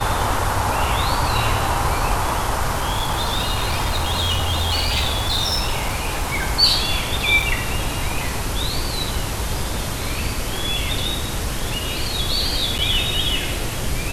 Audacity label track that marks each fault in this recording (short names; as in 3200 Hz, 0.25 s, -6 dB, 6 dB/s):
2.740000	6.470000	clipped -16 dBFS
7.420000	7.420000	gap 4.9 ms
12.780000	12.790000	gap 8 ms